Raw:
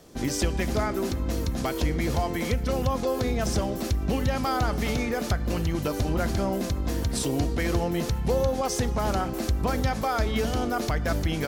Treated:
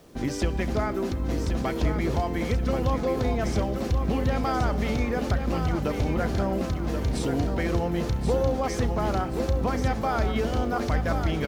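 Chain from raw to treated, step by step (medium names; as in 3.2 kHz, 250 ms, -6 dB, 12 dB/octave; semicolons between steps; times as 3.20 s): low-pass 2.8 kHz 6 dB/octave; word length cut 10-bit, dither none; on a send: feedback delay 1080 ms, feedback 36%, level -7 dB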